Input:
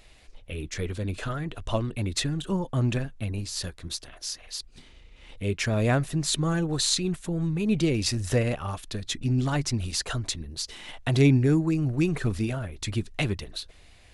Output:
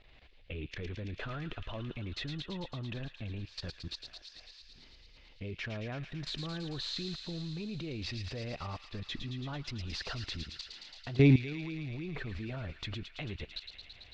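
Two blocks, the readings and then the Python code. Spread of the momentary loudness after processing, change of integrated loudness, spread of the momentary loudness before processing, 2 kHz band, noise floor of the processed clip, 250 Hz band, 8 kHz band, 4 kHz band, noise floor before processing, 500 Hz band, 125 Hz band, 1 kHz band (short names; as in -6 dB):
9 LU, -9.5 dB, 11 LU, -8.0 dB, -58 dBFS, -9.5 dB, -23.5 dB, -8.5 dB, -52 dBFS, -10.0 dB, -9.5 dB, -11.5 dB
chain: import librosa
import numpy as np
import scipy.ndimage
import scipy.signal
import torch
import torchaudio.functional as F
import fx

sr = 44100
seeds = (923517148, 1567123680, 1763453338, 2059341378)

y = scipy.signal.sosfilt(scipy.signal.butter(4, 4000.0, 'lowpass', fs=sr, output='sos'), x)
y = fx.level_steps(y, sr, step_db=19)
y = fx.echo_wet_highpass(y, sr, ms=111, feedback_pct=81, hz=2200.0, wet_db=-6.0)
y = F.gain(torch.from_numpy(y), -1.0).numpy()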